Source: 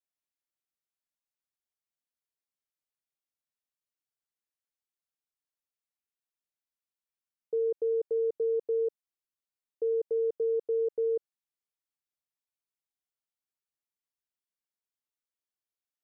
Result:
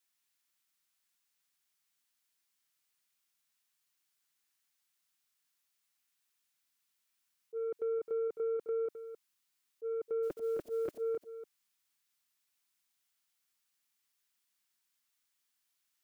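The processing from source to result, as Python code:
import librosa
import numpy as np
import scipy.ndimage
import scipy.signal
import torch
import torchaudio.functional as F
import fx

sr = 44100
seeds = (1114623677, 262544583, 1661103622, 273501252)

p1 = fx.spec_clip(x, sr, under_db=27, at=(10.22, 11.0), fade=0.02)
p2 = fx.highpass(p1, sr, hz=310.0, slope=6)
p3 = fx.peak_eq(p2, sr, hz=520.0, db=-13.0, octaves=1.4)
p4 = fx.auto_swell(p3, sr, attack_ms=103.0)
p5 = fx.over_compress(p4, sr, threshold_db=-47.0, ratio=-1.0)
p6 = p4 + (p5 * librosa.db_to_amplitude(-1.0))
p7 = 10.0 ** (-36.0 / 20.0) * np.tanh(p6 / 10.0 ** (-36.0 / 20.0))
p8 = p7 + 10.0 ** (-10.0 / 20.0) * np.pad(p7, (int(262 * sr / 1000.0), 0))[:len(p7)]
y = p8 * librosa.db_to_amplitude(5.0)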